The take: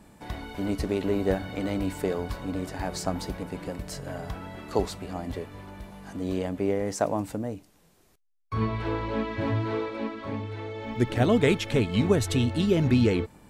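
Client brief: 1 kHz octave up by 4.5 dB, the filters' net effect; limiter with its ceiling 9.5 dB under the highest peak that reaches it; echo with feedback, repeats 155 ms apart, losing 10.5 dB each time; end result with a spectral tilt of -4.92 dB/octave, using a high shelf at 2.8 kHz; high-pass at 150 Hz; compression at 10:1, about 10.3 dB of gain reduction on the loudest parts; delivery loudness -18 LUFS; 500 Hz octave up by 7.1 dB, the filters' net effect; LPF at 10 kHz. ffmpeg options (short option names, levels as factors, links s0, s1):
-af "highpass=150,lowpass=10000,equalizer=f=500:t=o:g=8.5,equalizer=f=1000:t=o:g=3.5,highshelf=f=2800:g=-9,acompressor=threshold=0.0794:ratio=10,alimiter=limit=0.0944:level=0:latency=1,aecho=1:1:155|310|465:0.299|0.0896|0.0269,volume=4.47"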